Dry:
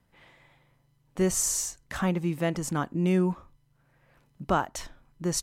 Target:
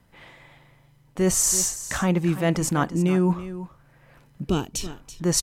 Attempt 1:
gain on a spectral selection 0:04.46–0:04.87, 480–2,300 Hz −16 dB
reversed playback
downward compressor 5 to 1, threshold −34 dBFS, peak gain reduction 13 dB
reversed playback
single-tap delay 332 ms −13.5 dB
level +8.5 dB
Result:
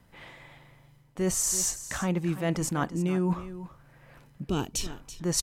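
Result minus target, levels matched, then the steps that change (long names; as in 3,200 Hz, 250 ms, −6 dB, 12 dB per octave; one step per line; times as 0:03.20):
downward compressor: peak gain reduction +6.5 dB
change: downward compressor 5 to 1, threshold −26 dBFS, peak gain reduction 6.5 dB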